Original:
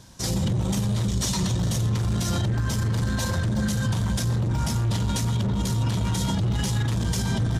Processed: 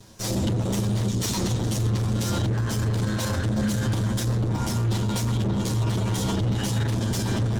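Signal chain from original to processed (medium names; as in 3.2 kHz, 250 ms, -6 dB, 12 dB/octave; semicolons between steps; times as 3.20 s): comb filter that takes the minimum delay 9.3 ms; peaking EQ 410 Hz +4 dB 1.5 oct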